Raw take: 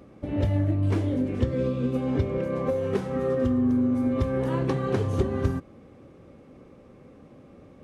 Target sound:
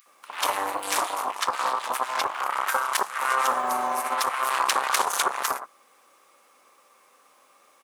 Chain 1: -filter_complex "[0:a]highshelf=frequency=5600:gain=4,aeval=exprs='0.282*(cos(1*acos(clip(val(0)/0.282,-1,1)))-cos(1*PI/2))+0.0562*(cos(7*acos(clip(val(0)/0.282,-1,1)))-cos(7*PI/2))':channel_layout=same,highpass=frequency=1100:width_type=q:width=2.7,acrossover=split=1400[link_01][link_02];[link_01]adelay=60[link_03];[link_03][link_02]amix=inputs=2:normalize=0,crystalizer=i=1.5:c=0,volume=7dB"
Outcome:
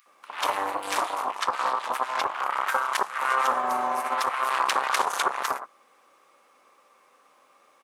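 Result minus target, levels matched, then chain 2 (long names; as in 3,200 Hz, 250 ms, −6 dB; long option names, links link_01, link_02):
8,000 Hz band −6.0 dB
-filter_complex "[0:a]highshelf=frequency=5600:gain=14.5,aeval=exprs='0.282*(cos(1*acos(clip(val(0)/0.282,-1,1)))-cos(1*PI/2))+0.0562*(cos(7*acos(clip(val(0)/0.282,-1,1)))-cos(7*PI/2))':channel_layout=same,highpass=frequency=1100:width_type=q:width=2.7,acrossover=split=1400[link_01][link_02];[link_01]adelay=60[link_03];[link_03][link_02]amix=inputs=2:normalize=0,crystalizer=i=1.5:c=0,volume=7dB"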